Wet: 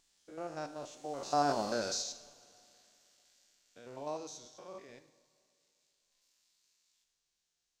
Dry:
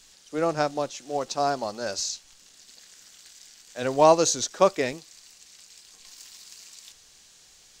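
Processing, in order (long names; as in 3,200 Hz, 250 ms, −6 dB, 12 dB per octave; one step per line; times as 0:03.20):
spectrum averaged block by block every 100 ms
source passing by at 0:01.64, 13 m/s, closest 2.6 metres
pitch vibrato 1.3 Hz 8.2 cents
coupled-rooms reverb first 0.64 s, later 2.8 s, from −16 dB, DRR 9 dB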